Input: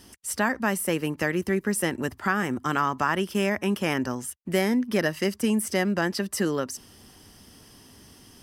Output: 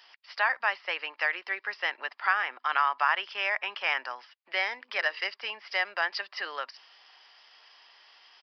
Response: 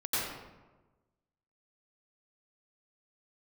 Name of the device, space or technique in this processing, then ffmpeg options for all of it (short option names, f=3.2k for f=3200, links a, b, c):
musical greeting card: -filter_complex "[0:a]asettb=1/sr,asplit=3[a][b][c];[a]atrim=end=4.794[d];[b]atrim=start=4.79:end=5.23,asetpts=PTS-STARTPTS,afade=t=in:d=0.004:c=qsin,afade=t=out:st=0.436:d=0.004:c=qsin,bandreject=f=50:t=h:w=6,bandreject=f=100:t=h:w=6,bandreject=f=150:t=h:w=6,bandreject=f=200:t=h:w=6,bandreject=f=250:t=h:w=6,bandreject=f=300:t=h:w=6,bandreject=f=350:t=h:w=6,bandreject=f=400:t=h:w=6,bandreject=f=450:t=h:w=6,bandreject=f=500:t=h:w=6[e];[c]atrim=start=5.226[f];[d][e]acrossfade=d=0.004:c1=hsin:c2=qsin[g];[g][f]acrossfade=d=0.004:c1=qsin:c2=hsin,aresample=11025,aresample=44100,highpass=f=740:w=0.5412,highpass=f=740:w=1.3066,equalizer=f=2.3k:t=o:w=0.59:g=4.5"